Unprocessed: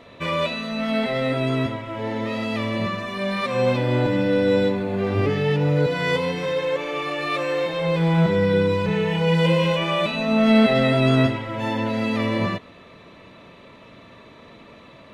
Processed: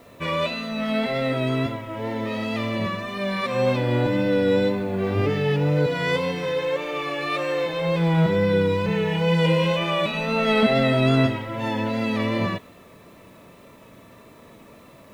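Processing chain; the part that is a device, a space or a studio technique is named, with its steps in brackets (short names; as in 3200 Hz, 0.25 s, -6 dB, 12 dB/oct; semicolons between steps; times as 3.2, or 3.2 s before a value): 10.11–10.63 doubler 25 ms -3 dB; plain cassette with noise reduction switched in (mismatched tape noise reduction decoder only; wow and flutter 27 cents; white noise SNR 39 dB); gain -1 dB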